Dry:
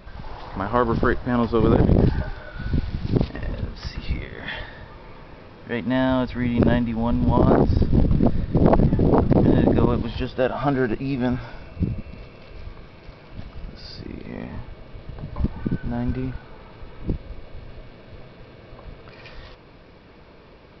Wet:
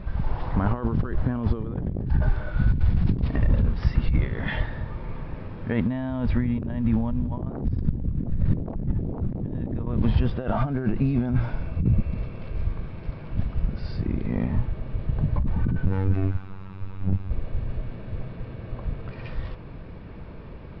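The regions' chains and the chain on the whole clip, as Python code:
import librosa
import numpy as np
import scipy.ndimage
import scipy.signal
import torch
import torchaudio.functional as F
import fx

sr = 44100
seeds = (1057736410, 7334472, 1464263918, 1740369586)

y = fx.chain(x, sr, fx.lower_of_two(delay_ms=0.79),
    fx.robotise(hz=95.4), at=(15.86, 17.31))
y = fx.high_shelf(y, sr, hz=4400.0, db=-5.0)
y = fx.over_compress(y, sr, threshold_db=-27.0, ratio=-1.0)
y = fx.bass_treble(y, sr, bass_db=10, treble_db=-12)
y = F.gain(torch.from_numpy(y), -4.0).numpy()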